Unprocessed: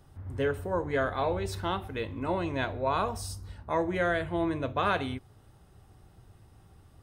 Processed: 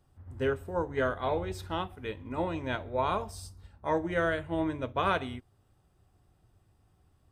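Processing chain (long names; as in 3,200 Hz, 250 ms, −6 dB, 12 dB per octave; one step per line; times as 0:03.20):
wrong playback speed 25 fps video run at 24 fps
expander for the loud parts 1.5 to 1, over −45 dBFS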